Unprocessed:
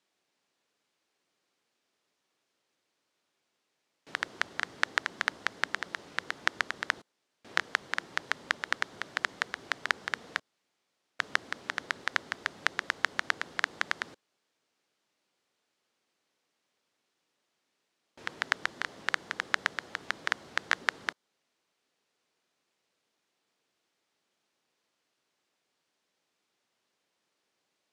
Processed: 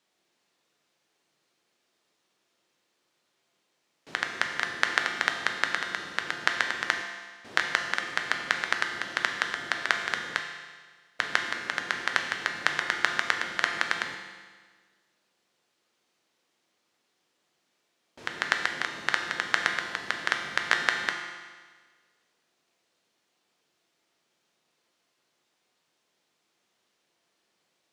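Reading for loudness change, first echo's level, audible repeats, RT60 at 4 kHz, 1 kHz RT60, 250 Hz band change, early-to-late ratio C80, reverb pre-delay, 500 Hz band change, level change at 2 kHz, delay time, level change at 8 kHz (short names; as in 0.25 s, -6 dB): +4.5 dB, none, none, 1.5 s, 1.5 s, +5.0 dB, 7.0 dB, 6 ms, +5.0 dB, +4.5 dB, none, +5.0 dB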